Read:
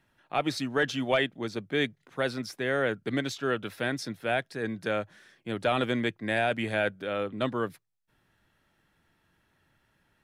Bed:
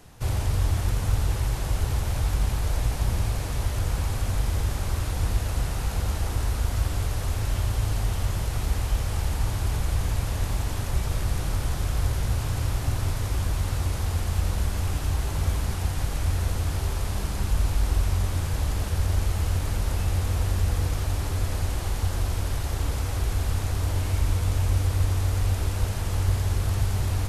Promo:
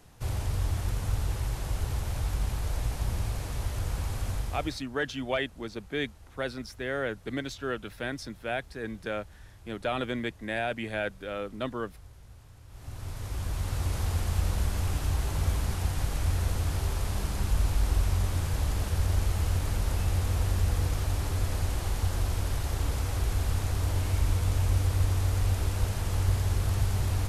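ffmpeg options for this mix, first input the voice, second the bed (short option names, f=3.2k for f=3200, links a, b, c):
-filter_complex "[0:a]adelay=4200,volume=-4dB[a];[1:a]volume=17.5dB,afade=t=out:st=4.3:d=0.54:silence=0.1,afade=t=in:st=12.68:d=1.32:silence=0.0707946[b];[a][b]amix=inputs=2:normalize=0"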